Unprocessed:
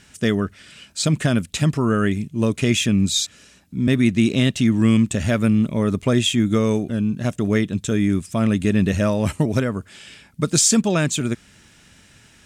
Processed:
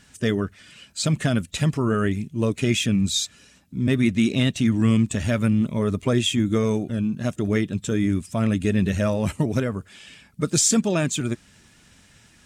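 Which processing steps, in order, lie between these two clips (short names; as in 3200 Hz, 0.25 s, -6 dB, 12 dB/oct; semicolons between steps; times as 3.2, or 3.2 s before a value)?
bin magnitudes rounded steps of 15 dB; gain -2.5 dB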